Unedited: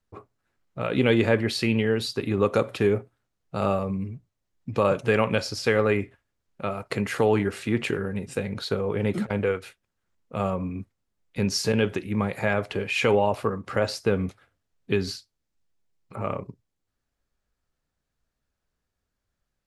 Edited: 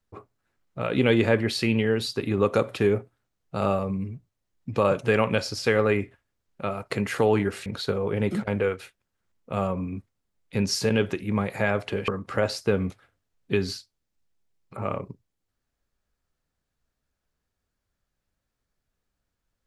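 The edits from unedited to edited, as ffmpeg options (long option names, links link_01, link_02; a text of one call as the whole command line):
ffmpeg -i in.wav -filter_complex "[0:a]asplit=3[link_01][link_02][link_03];[link_01]atrim=end=7.662[link_04];[link_02]atrim=start=8.488:end=12.912[link_05];[link_03]atrim=start=13.468[link_06];[link_04][link_05]acrossfade=duration=0.004:curve1=hsin:curve2=hsin[link_07];[link_07][link_06]acrossfade=duration=0.004:curve1=hsin:curve2=hsin" out.wav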